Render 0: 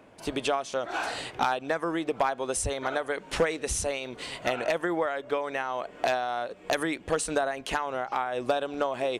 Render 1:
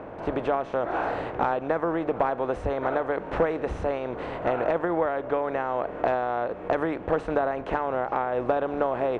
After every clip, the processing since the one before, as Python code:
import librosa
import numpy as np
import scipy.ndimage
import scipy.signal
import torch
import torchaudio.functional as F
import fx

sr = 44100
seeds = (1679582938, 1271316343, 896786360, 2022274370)

y = fx.bin_compress(x, sr, power=0.6)
y = scipy.signal.sosfilt(scipy.signal.butter(2, 1300.0, 'lowpass', fs=sr, output='sos'), y)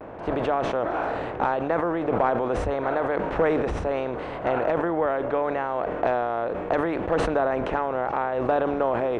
y = fx.vibrato(x, sr, rate_hz=0.75, depth_cents=57.0)
y = fx.sustainer(y, sr, db_per_s=26.0)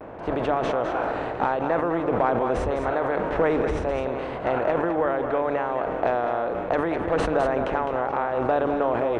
y = x + 10.0 ** (-7.5 / 20.0) * np.pad(x, (int(208 * sr / 1000.0), 0))[:len(x)]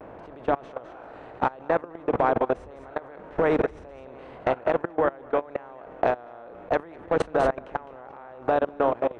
y = fx.level_steps(x, sr, step_db=23)
y = F.gain(torch.from_numpy(y), 2.5).numpy()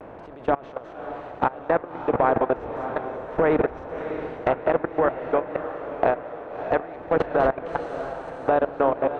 y = fx.echo_diffused(x, sr, ms=619, feedback_pct=53, wet_db=-10.0)
y = fx.env_lowpass_down(y, sr, base_hz=2800.0, full_db=-21.0)
y = F.gain(torch.from_numpy(y), 2.0).numpy()